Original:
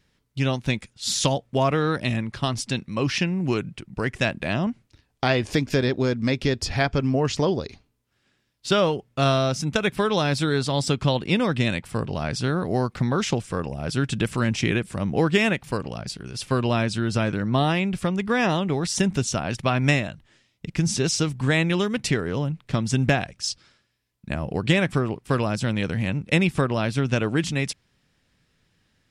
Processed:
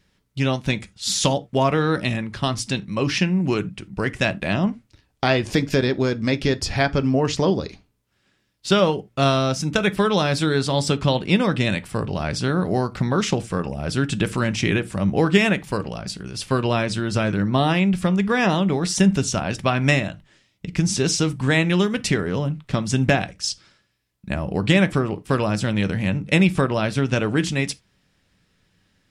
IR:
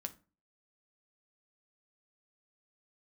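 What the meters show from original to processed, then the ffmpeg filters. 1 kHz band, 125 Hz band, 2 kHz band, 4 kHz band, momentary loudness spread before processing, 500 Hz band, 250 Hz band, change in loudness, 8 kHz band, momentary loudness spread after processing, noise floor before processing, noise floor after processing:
+2.5 dB, +2.0 dB, +2.5 dB, +2.5 dB, 8 LU, +2.5 dB, +3.5 dB, +2.5 dB, +2.5 dB, 8 LU, −69 dBFS, −67 dBFS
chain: -filter_complex "[0:a]asplit=2[link_01][link_02];[1:a]atrim=start_sample=2205,atrim=end_sample=3969[link_03];[link_02][link_03]afir=irnorm=-1:irlink=0,volume=4.5dB[link_04];[link_01][link_04]amix=inputs=2:normalize=0,volume=-4.5dB"

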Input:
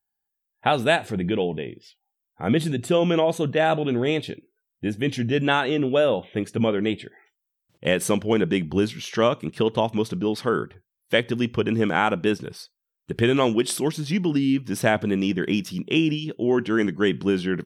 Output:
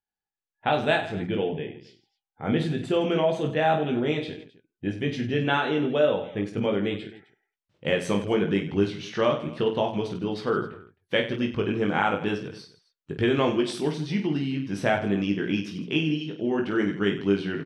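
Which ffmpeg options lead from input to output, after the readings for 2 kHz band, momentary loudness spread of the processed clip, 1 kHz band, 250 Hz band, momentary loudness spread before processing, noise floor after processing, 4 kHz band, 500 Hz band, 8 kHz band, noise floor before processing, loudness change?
−3.0 dB, 8 LU, −2.0 dB, −3.0 dB, 7 LU, below −85 dBFS, −3.5 dB, −2.5 dB, −12.0 dB, −82 dBFS, −3.0 dB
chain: -filter_complex "[0:a]lowpass=4900,asplit=2[link_01][link_02];[link_02]aecho=0:1:20|50|95|162.5|263.8:0.631|0.398|0.251|0.158|0.1[link_03];[link_01][link_03]amix=inputs=2:normalize=0,volume=-5dB"

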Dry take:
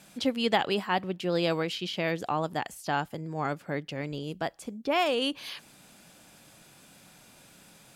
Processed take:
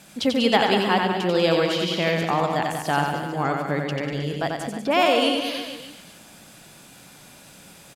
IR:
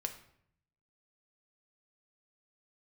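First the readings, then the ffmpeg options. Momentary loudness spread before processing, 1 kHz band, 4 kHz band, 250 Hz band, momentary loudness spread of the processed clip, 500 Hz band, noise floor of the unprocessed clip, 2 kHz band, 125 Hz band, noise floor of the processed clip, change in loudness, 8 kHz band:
10 LU, +8.0 dB, +8.0 dB, +8.0 dB, 9 LU, +8.0 dB, −56 dBFS, +8.0 dB, +8.0 dB, −48 dBFS, +8.0 dB, +8.0 dB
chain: -filter_complex "[0:a]aecho=1:1:90|193.5|312.5|449.4|606.8:0.631|0.398|0.251|0.158|0.1,asplit=2[link_01][link_02];[1:a]atrim=start_sample=2205,adelay=144[link_03];[link_02][link_03]afir=irnorm=-1:irlink=0,volume=-13.5dB[link_04];[link_01][link_04]amix=inputs=2:normalize=0,volume=5.5dB"

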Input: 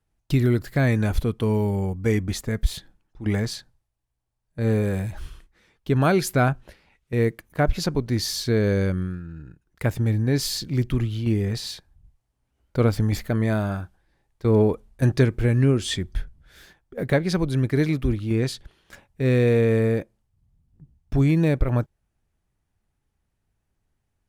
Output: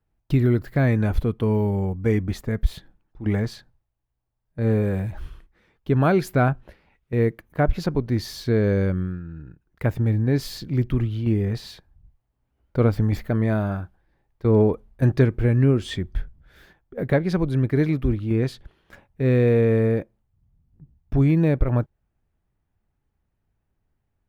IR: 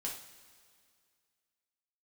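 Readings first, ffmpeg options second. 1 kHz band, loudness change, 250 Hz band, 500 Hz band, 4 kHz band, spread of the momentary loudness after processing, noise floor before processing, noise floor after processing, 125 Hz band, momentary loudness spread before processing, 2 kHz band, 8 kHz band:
0.0 dB, +0.5 dB, +1.0 dB, +1.0 dB, −7.0 dB, 12 LU, −76 dBFS, −75 dBFS, +1.0 dB, 14 LU, −2.0 dB, below −10 dB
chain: -af "equalizer=frequency=7900:width=0.43:gain=-12.5,volume=1dB"

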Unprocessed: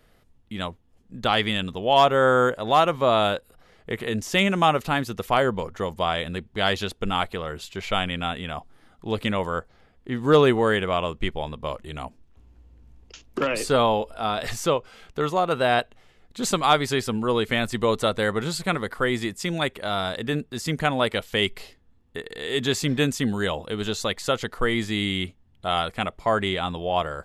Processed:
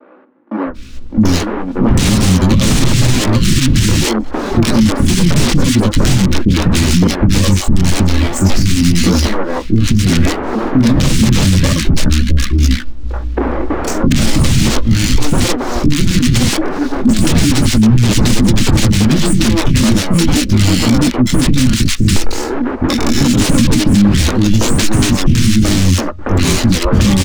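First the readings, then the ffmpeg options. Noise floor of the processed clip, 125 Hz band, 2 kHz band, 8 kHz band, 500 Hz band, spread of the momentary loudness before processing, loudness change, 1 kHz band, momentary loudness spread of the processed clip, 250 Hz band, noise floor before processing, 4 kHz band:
−21 dBFS, +20.0 dB, +6.0 dB, +19.0 dB, +3.0 dB, 13 LU, +11.5 dB, +1.0 dB, 6 LU, +17.5 dB, −59 dBFS, +10.0 dB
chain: -filter_complex "[0:a]equalizer=frequency=1300:width_type=o:width=0.3:gain=-9.5,aecho=1:1:3.5:0.68,adynamicequalizer=threshold=0.0158:dfrequency=2300:dqfactor=0.85:tfrequency=2300:tqfactor=0.85:attack=5:release=100:ratio=0.375:range=2.5:mode=boostabove:tftype=bell,flanger=delay=15.5:depth=7.6:speed=0.34,aresample=11025,aeval=exprs='(mod(10.6*val(0)+1,2)-1)/10.6':channel_layout=same,aresample=44100,acrossover=split=260[link_01][link_02];[link_02]acompressor=threshold=-44dB:ratio=4[link_03];[link_01][link_03]amix=inputs=2:normalize=0,acrossover=split=460[link_04][link_05];[link_04]crystalizer=i=8.5:c=0[link_06];[link_05]aeval=exprs='abs(val(0))':channel_layout=same[link_07];[link_06][link_07]amix=inputs=2:normalize=0,acrossover=split=330|1500[link_08][link_09][link_10];[link_08]adelay=660[link_11];[link_10]adelay=740[link_12];[link_11][link_09][link_12]amix=inputs=3:normalize=0,alimiter=level_in=33dB:limit=-1dB:release=50:level=0:latency=1,volume=-1dB"

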